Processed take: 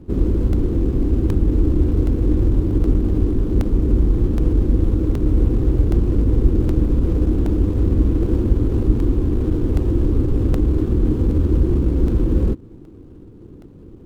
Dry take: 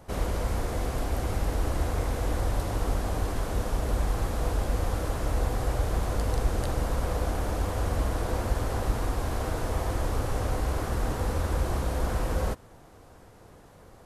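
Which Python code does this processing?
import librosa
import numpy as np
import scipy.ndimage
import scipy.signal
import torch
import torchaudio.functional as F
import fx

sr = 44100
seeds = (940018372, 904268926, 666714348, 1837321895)

y = scipy.ndimage.median_filter(x, 25, mode='constant')
y = fx.low_shelf_res(y, sr, hz=470.0, db=12.0, q=3.0)
y = fx.buffer_crackle(y, sr, first_s=0.53, period_s=0.77, block=64, kind='repeat')
y = F.gain(torch.from_numpy(y), -1.0).numpy()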